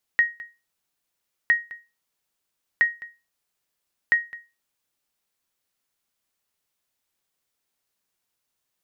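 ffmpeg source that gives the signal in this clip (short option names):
-f lavfi -i "aevalsrc='0.299*(sin(2*PI*1880*mod(t,1.31))*exp(-6.91*mod(t,1.31)/0.27)+0.106*sin(2*PI*1880*max(mod(t,1.31)-0.21,0))*exp(-6.91*max(mod(t,1.31)-0.21,0)/0.27))':d=5.24:s=44100"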